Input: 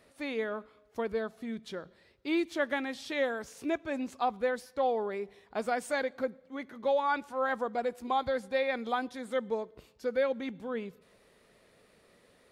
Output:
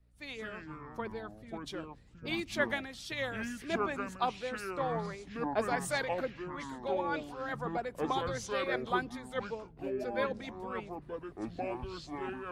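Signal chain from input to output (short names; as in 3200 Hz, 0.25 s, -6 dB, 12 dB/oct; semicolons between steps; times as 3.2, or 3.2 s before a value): buzz 60 Hz, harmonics 5, -54 dBFS; harmonic-percussive split harmonic -10 dB; echoes that change speed 0.13 s, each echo -6 st, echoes 2; three-band expander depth 70%; gain +2 dB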